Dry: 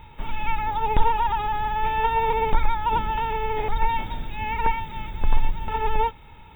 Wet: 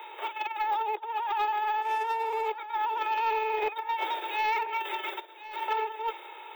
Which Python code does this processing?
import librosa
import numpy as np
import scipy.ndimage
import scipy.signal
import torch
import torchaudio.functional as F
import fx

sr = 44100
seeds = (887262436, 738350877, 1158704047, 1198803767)

y = fx.median_filter(x, sr, points=9, at=(1.82, 2.48))
y = fx.comb(y, sr, ms=5.2, depth=0.96, at=(4.72, 5.33))
y = fx.over_compress(y, sr, threshold_db=-28.0, ratio=-1.0)
y = fx.dmg_tone(y, sr, hz=2500.0, level_db=-39.0, at=(3.01, 3.72), fade=0.02)
y = scipy.signal.sosfilt(scipy.signal.butter(16, 340.0, 'highpass', fs=sr, output='sos'), y)
y = 10.0 ** (-20.0 / 20.0) * np.tanh(y / 10.0 ** (-20.0 / 20.0))
y = y + 10.0 ** (-14.5 / 20.0) * np.pad(y, (int(1065 * sr / 1000.0), 0))[:len(y)]